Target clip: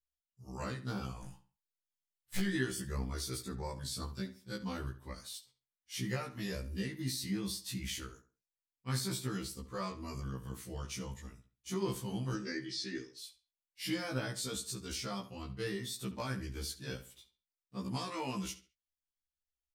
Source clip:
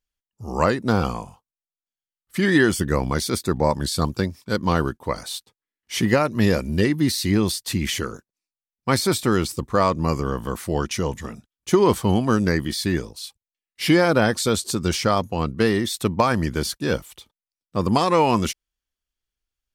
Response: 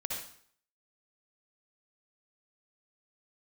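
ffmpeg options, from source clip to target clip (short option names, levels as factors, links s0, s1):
-filter_complex "[0:a]asplit=3[s0][s1][s2];[s0]afade=t=out:st=1.22:d=0.02[s3];[s1]aeval=exprs='0.224*(cos(1*acos(clip(val(0)/0.224,-1,1)))-cos(1*PI/2))+0.0708*(cos(5*acos(clip(val(0)/0.224,-1,1)))-cos(5*PI/2))+0.112*(cos(8*acos(clip(val(0)/0.224,-1,1)))-cos(8*PI/2))':c=same,afade=t=in:st=1.22:d=0.02,afade=t=out:st=2.39:d=0.02[s4];[s2]afade=t=in:st=2.39:d=0.02[s5];[s3][s4][s5]amix=inputs=3:normalize=0,equalizer=f=640:w=0.39:g=-11,flanger=delay=1.7:depth=8.3:regen=-44:speed=0.61:shape=triangular,asettb=1/sr,asplit=3[s6][s7][s8];[s6]atrim=end=12.344[s9];[s7]atrim=start=12.34:end=13.19,asetpts=PTS-STARTPTS,afade=t=in:d=0.004:c=qsin,afade=t=out:st=0.846:d=0.004:c=qsin,highpass=f=140:w=0.5412,highpass=f=140:w=1.3066,equalizer=f=190:t=q:w=4:g=-9,equalizer=f=350:t=q:w=4:g=7,equalizer=f=670:t=q:w=4:g=-5,equalizer=f=1000:t=q:w=4:g=-7,equalizer=f=1900:t=q:w=4:g=4,equalizer=f=5300:t=q:w=4:g=6,lowpass=f=6900:w=0.5412,lowpass=f=6900:w=1.3066[s10];[s8]atrim=start=13.186[s11];[s9][s10]acrossfade=d=0.004:c1=hsin:c2=qsin[s12];[s12][s11]acrossfade=d=0.004:c1=qsin:c2=hsin,asplit=2[s13][s14];[s14]adelay=69,lowpass=f=4800:p=1,volume=0.224,asplit=2[s15][s16];[s16]adelay=69,lowpass=f=4800:p=1,volume=0.31,asplit=2[s17][s18];[s18]adelay=69,lowpass=f=4800:p=1,volume=0.31[s19];[s15][s17][s19]amix=inputs=3:normalize=0[s20];[s13][s20]amix=inputs=2:normalize=0,afftfilt=real='re*1.73*eq(mod(b,3),0)':imag='im*1.73*eq(mod(b,3),0)':win_size=2048:overlap=0.75,volume=0.501"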